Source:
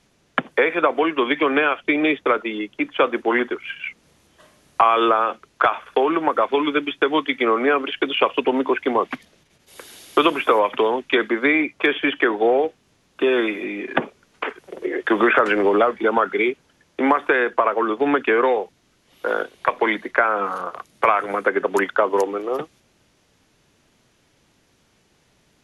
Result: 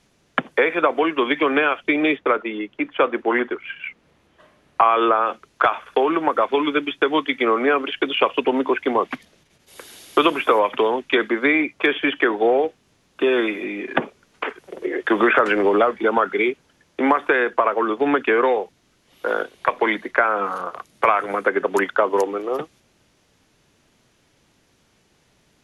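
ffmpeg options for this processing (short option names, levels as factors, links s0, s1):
-filter_complex "[0:a]asettb=1/sr,asplit=3[s0][s1][s2];[s0]atrim=end=2.164[s3];[s1]atrim=start=2.16:end=5.26,asetpts=PTS-STARTPTS,afade=t=in:d=0.004:c=qsin,afade=t=out:st=3.096:d=0.004:c=qsin,bass=f=250:g=-2,treble=f=4000:g=-13[s4];[s2]atrim=start=5.256[s5];[s3][s4]acrossfade=d=0.004:c1=hsin:c2=qsin[s6];[s6][s5]acrossfade=d=0.004:c1=qsin:c2=hsin"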